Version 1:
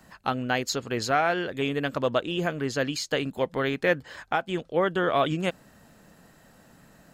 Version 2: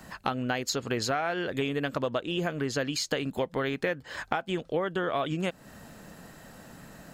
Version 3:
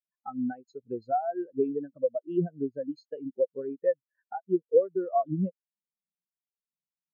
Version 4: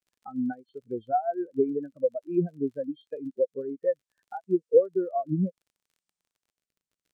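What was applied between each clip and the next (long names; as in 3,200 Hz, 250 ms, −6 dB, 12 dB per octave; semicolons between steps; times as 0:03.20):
downward compressor 6 to 1, threshold −33 dBFS, peak gain reduction 15 dB; level +6.5 dB
every bin expanded away from the loudest bin 4 to 1
hearing-aid frequency compression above 1,800 Hz 1.5 to 1; surface crackle 35 per second −55 dBFS; rotating-speaker cabinet horn 7.5 Hz, later 0.65 Hz, at 0:02.25; level +3.5 dB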